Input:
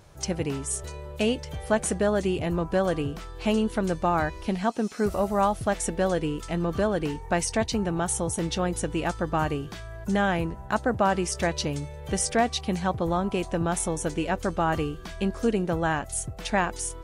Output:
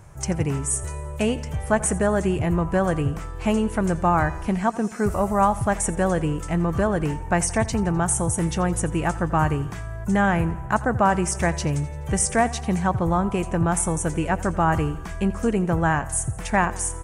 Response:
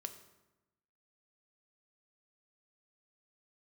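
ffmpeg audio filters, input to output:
-filter_complex "[0:a]equalizer=f=125:t=o:w=1:g=4,equalizer=f=250:t=o:w=1:g=-5,equalizer=f=500:t=o:w=1:g=-5,equalizer=f=1k:t=o:w=1:g=5,equalizer=f=2k:t=o:w=1:g=5,equalizer=f=4k:t=o:w=1:g=-10,equalizer=f=8k:t=o:w=1:g=8,aecho=1:1:85|170|255|340|425:0.119|0.0689|0.04|0.0232|0.0134,acrossover=split=620|2300[a][b][c];[a]acontrast=77[d];[d][b][c]amix=inputs=3:normalize=0"

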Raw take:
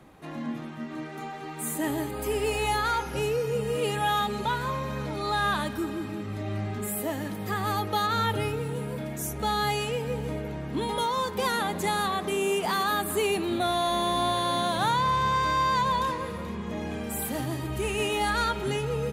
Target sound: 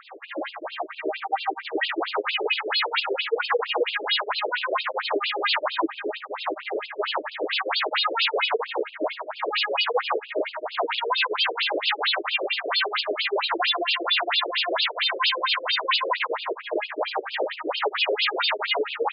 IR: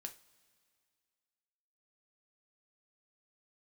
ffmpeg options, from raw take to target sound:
-filter_complex "[0:a]acrossover=split=1700[a][b];[a]aeval=exprs='val(0)*(1-1/2+1/2*cos(2*PI*7.4*n/s))':c=same[c];[b]aeval=exprs='val(0)*(1-1/2-1/2*cos(2*PI*7.4*n/s))':c=same[d];[c][d]amix=inputs=2:normalize=0,aeval=exprs='0.133*sin(PI/2*6.31*val(0)/0.133)':c=same,afftfilt=real='re*between(b*sr/1024,420*pow(3700/420,0.5+0.5*sin(2*PI*4.4*pts/sr))/1.41,420*pow(3700/420,0.5+0.5*sin(2*PI*4.4*pts/sr))*1.41)':imag='im*between(b*sr/1024,420*pow(3700/420,0.5+0.5*sin(2*PI*4.4*pts/sr))/1.41,420*pow(3700/420,0.5+0.5*sin(2*PI*4.4*pts/sr))*1.41)':win_size=1024:overlap=0.75,volume=3.5dB"

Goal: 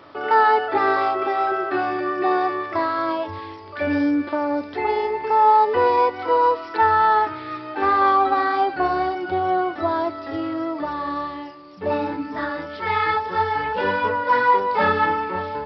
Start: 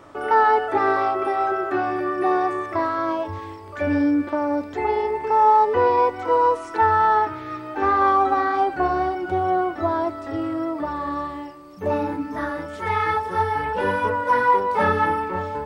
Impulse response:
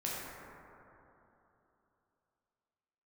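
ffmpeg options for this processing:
-af "highpass=f=120:p=1,aemphasis=mode=production:type=75kf,aresample=11025,aresample=44100"

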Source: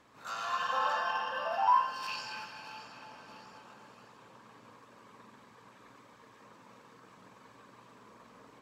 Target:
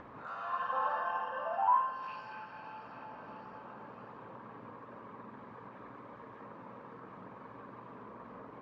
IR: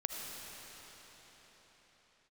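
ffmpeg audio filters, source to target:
-filter_complex "[0:a]acompressor=mode=upward:threshold=-37dB:ratio=2.5,lowpass=1.4k[a];[1:a]atrim=start_sample=2205,atrim=end_sample=3528[b];[a][b]afir=irnorm=-1:irlink=0"

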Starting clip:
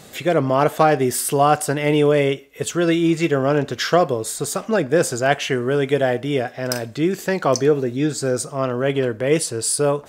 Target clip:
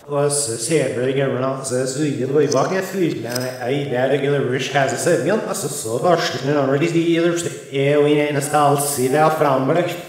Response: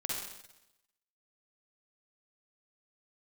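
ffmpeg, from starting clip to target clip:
-filter_complex "[0:a]areverse,asplit=2[a][b];[1:a]atrim=start_sample=2205[c];[b][c]afir=irnorm=-1:irlink=0,volume=-4dB[d];[a][d]amix=inputs=2:normalize=0,volume=-3.5dB"

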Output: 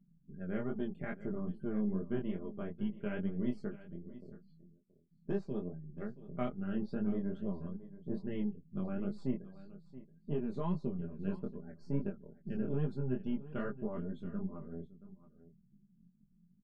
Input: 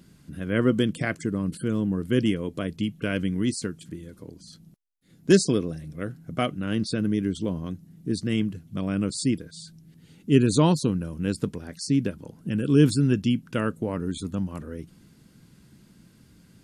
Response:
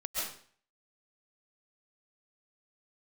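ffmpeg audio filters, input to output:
-af "aeval=exprs='if(lt(val(0),0),0.447*val(0),val(0))':c=same,afftdn=nr=27:nf=-45,lowpass=1.5k,aecho=1:1:5:0.75,alimiter=limit=-14dB:level=0:latency=1:release=498,flanger=delay=19.5:depth=4.6:speed=2.4,aecho=1:1:676:0.15,volume=-7.5dB"

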